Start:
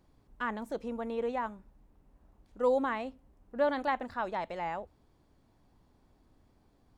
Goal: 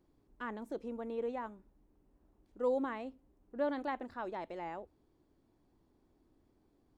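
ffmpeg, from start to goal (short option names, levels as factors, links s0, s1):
-af "equalizer=f=340:t=o:w=0.85:g=10,volume=0.376"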